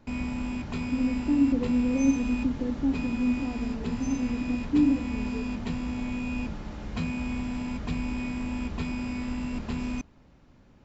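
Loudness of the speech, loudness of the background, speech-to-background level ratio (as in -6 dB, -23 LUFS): -28.0 LUFS, -33.0 LUFS, 5.0 dB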